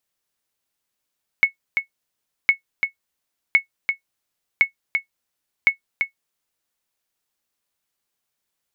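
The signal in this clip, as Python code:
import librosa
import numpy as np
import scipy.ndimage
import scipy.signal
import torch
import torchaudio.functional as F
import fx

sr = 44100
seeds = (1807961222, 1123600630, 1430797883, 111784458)

y = fx.sonar_ping(sr, hz=2200.0, decay_s=0.11, every_s=1.06, pings=5, echo_s=0.34, echo_db=-6.0, level_db=-5.0)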